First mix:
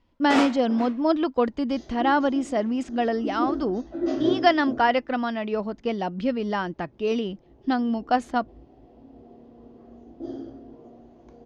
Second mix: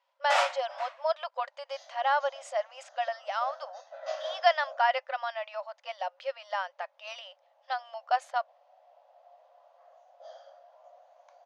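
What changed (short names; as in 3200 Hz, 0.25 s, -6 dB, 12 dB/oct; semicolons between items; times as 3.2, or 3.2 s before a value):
speech -4.0 dB; master: add brick-wall FIR high-pass 520 Hz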